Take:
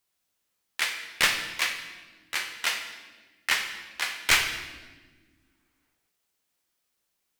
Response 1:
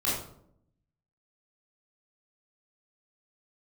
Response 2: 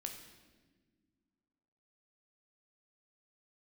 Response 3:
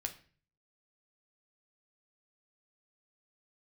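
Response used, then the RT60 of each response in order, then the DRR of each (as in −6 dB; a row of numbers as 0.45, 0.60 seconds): 2; 0.70 s, non-exponential decay, 0.40 s; −8.0, 3.5, 4.5 decibels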